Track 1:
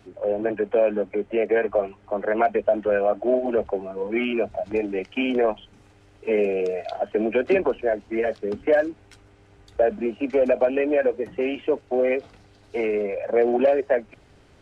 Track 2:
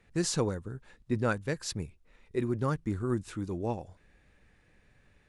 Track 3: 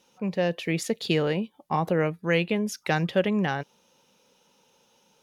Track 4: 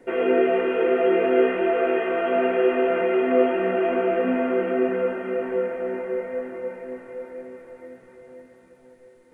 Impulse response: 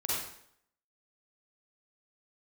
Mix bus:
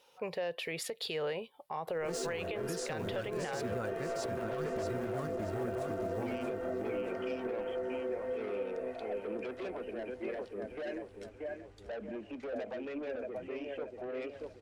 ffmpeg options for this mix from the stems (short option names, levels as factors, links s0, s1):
-filter_complex "[0:a]adelay=2100,volume=0.422,asplit=2[s0][s1];[s1]volume=0.178[s2];[1:a]acrusher=bits=9:dc=4:mix=0:aa=0.000001,adelay=1900,volume=1.33,asplit=2[s3][s4];[s4]volume=0.335[s5];[2:a]lowshelf=f=350:t=q:w=1.5:g=-7,volume=0.944[s6];[3:a]equalizer=f=2400:t=o:w=0.49:g=-12.5,acompressor=threshold=0.0447:ratio=6,adelay=1950,volume=0.562[s7];[s6][s7]amix=inputs=2:normalize=0,equalizer=f=200:t=o:w=0.33:g=-12,equalizer=f=315:t=o:w=0.33:g=-4,equalizer=f=6300:t=o:w=0.33:g=-9,acompressor=threshold=0.0282:ratio=4,volume=1[s8];[s0][s3]amix=inputs=2:normalize=0,asoftclip=type=tanh:threshold=0.0355,alimiter=level_in=4.47:limit=0.0631:level=0:latency=1:release=137,volume=0.224,volume=1[s9];[s2][s5]amix=inputs=2:normalize=0,aecho=0:1:630|1260|1890|2520|3150|3780:1|0.4|0.16|0.064|0.0256|0.0102[s10];[s8][s9][s10]amix=inputs=3:normalize=0,alimiter=level_in=1.5:limit=0.0631:level=0:latency=1:release=79,volume=0.668"